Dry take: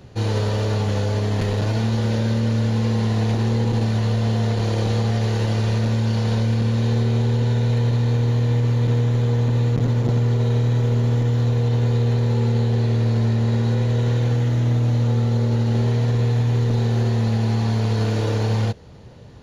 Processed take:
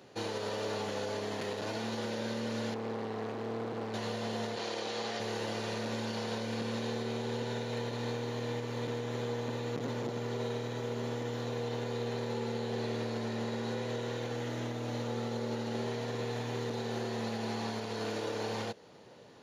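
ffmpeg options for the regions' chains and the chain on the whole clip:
-filter_complex "[0:a]asettb=1/sr,asplit=3[a][b][c];[a]atrim=end=2.744[d];[b]atrim=start=2.74:end=3.94,asetpts=PTS-STARTPTS,afade=t=in:d=0.004:c=qsin,afade=t=out:st=1.196:d=0.004:c=qsin,lowpass=f=1.4k:p=1,asoftclip=type=hard:threshold=-22dB[e];[c]atrim=start=3.936[f];[d][e]acrossfade=d=0.004:c1=hsin:c2=qsin[g];[g][f]acrossfade=d=0.004:c1=qsin:c2=hsin,asettb=1/sr,asplit=3[h][i][j];[h]atrim=end=4.564[k];[i]atrim=start=4.56:end=5.2,asetpts=PTS-STARTPTS,afade=t=in:d=0.004:c=qsin,afade=t=out:st=0.636:d=0.004:c=qsin,lowpass=4.7k,aemphasis=mode=production:type=bsi[l];[j]atrim=start=5.196[m];[k][l]acrossfade=d=0.004:c1=hsin:c2=qsin[n];[n][m]acrossfade=d=0.004:c1=qsin:c2=hsin,highpass=310,alimiter=limit=-21.5dB:level=0:latency=1:release=165,volume=-5dB"

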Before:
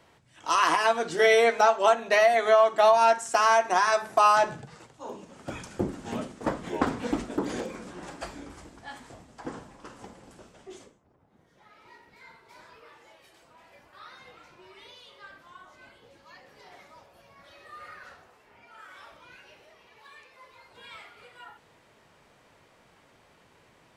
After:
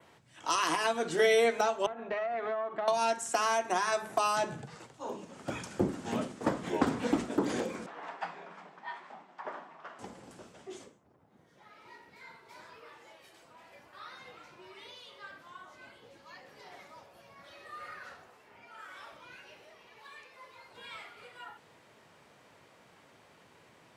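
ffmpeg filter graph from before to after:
-filter_complex "[0:a]asettb=1/sr,asplit=3[a][b][c];[a]atrim=end=1.864[d];[b]atrim=start=1.86:end=2.88,asetpts=PTS-STARTPTS,afade=t=in:d=0.004:c=qsin,afade=t=out:st=1.016:d=0.004:c=qsin,lowpass=1.7k,acompressor=threshold=-28dB:ratio=6:attack=3.2:release=140:knee=1:detection=peak,aeval=exprs='(tanh(11.2*val(0)+0.55)-tanh(0.55))/11.2':c=same[e];[c]atrim=start=2.876[f];[d][e]acrossfade=d=0.004:c1=hsin:c2=qsin[g];[g][f]acrossfade=d=0.004:c1=qsin:c2=hsin,asettb=1/sr,asplit=3[h][i][j];[h]atrim=end=7.864[k];[i]atrim=start=7.86:end=9.99,asetpts=PTS-STARTPTS,afade=t=in:d=0.004:c=qsin,afade=t=out:st=2.126:d=0.004:c=qsin,lowpass=2.6k,lowshelf=f=440:t=q:w=1.5:g=-9,afreqshift=120[l];[j]atrim=start=9.986[m];[k][l]acrossfade=d=0.004:c1=hsin:c2=qsin[n];[n][m]acrossfade=d=0.004:c1=qsin:c2=hsin,highpass=95,adynamicequalizer=threshold=0.00316:dfrequency=5000:dqfactor=2:tfrequency=5000:tqfactor=2:attack=5:release=100:ratio=0.375:range=3.5:mode=cutabove:tftype=bell,acrossover=split=410|3000[o][p][q];[p]acompressor=threshold=-29dB:ratio=6[r];[o][r][q]amix=inputs=3:normalize=0"

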